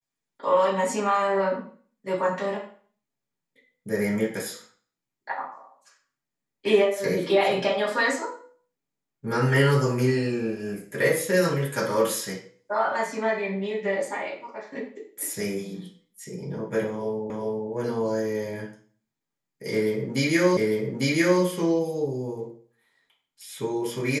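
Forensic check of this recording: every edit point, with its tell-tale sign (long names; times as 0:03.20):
0:17.30: the same again, the last 0.4 s
0:20.57: the same again, the last 0.85 s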